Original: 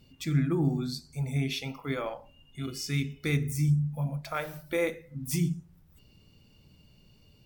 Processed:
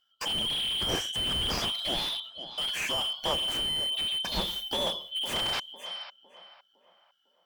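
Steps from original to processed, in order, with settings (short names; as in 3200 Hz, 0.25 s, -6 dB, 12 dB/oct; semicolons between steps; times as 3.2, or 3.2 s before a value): four-band scrambler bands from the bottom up 2413; gate -50 dBFS, range -23 dB; 0.81–1.7 band shelf 6100 Hz +15 dB 2.7 oct; in parallel at -8 dB: wavefolder -26 dBFS; 5.35–5.6 on the sum: painted sound noise 550–5700 Hz -34 dBFS; on a send: tape echo 0.505 s, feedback 46%, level -11 dB, low-pass 1400 Hz; on the sum: slew limiter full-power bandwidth 56 Hz; gain +5.5 dB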